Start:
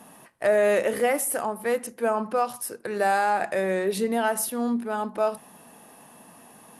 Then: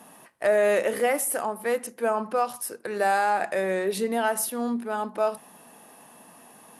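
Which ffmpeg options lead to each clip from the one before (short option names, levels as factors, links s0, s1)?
-af "lowshelf=f=140:g=-9"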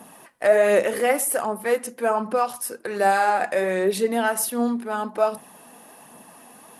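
-af "flanger=delay=0.1:depth=4:regen=58:speed=1.3:shape=sinusoidal,volume=2.37"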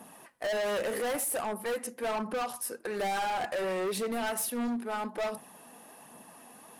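-af "asoftclip=type=hard:threshold=0.0631,volume=0.562"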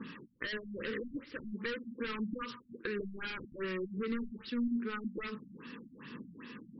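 -af "acompressor=threshold=0.01:ratio=12,asuperstop=centerf=720:order=4:qfactor=0.77,afftfilt=real='re*lt(b*sr/1024,240*pow(5800/240,0.5+0.5*sin(2*PI*2.5*pts/sr)))':imag='im*lt(b*sr/1024,240*pow(5800/240,0.5+0.5*sin(2*PI*2.5*pts/sr)))':win_size=1024:overlap=0.75,volume=3.16"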